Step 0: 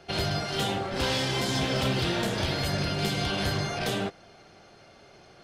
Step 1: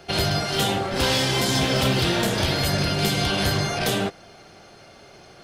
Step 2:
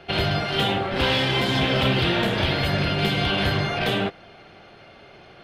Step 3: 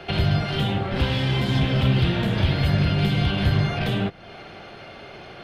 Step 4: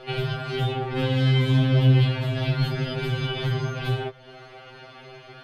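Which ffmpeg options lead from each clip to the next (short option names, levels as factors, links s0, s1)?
-af "highshelf=f=9500:g=9.5,volume=1.88"
-af "highshelf=f=4500:t=q:w=1.5:g=-13"
-filter_complex "[0:a]acrossover=split=200[s0][s1];[s1]acompressor=threshold=0.0141:ratio=3[s2];[s0][s2]amix=inputs=2:normalize=0,volume=2.11"
-af "afftfilt=real='re*2.45*eq(mod(b,6),0)':imag='im*2.45*eq(mod(b,6),0)':win_size=2048:overlap=0.75,volume=0.841"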